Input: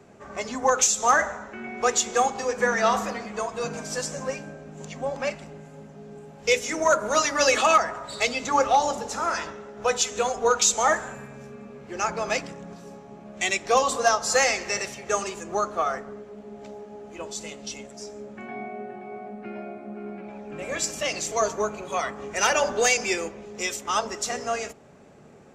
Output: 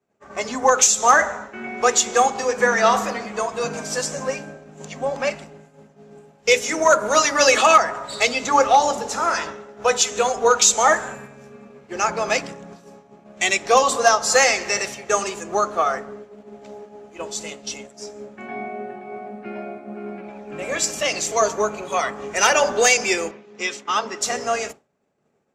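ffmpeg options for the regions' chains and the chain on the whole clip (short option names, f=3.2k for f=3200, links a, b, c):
-filter_complex "[0:a]asettb=1/sr,asplit=3[a][b][c];[a]atrim=end=23.314[d];[b]atrim=start=23.31:end=24.21,asetpts=PTS-STARTPTS,afade=t=in:d=0.004:c=qsin,afade=t=out:st=0.896:d=0.004:c=qsin,highpass=160,lowpass=4.3k,equalizer=f=630:t=o:w=0.9:g=-6[e];[c]atrim=start=24.206[f];[d][e]acrossfade=d=0.004:c1=hsin:c2=qsin[g];[g][f]acrossfade=d=0.004:c1=qsin:c2=hsin,agate=range=-33dB:threshold=-36dB:ratio=3:detection=peak,lowshelf=f=150:g=-7,volume=5.5dB"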